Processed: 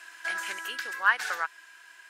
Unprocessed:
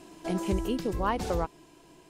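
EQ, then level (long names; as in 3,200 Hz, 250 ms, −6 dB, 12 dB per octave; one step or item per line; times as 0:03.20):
high-pass with resonance 1,600 Hz, resonance Q 7.7
+3.5 dB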